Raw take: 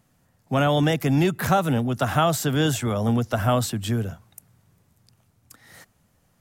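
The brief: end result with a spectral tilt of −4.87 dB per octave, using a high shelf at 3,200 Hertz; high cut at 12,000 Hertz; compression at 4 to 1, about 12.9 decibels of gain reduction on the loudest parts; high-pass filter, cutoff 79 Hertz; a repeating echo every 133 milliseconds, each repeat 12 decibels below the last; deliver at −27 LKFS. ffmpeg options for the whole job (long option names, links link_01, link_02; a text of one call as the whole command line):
ffmpeg -i in.wav -af "highpass=79,lowpass=12000,highshelf=frequency=3200:gain=4,acompressor=threshold=-32dB:ratio=4,aecho=1:1:133|266|399:0.251|0.0628|0.0157,volume=6.5dB" out.wav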